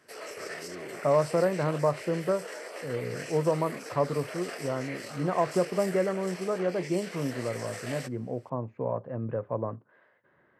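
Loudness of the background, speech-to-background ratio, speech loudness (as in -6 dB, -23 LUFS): -40.5 LUFS, 10.0 dB, -30.5 LUFS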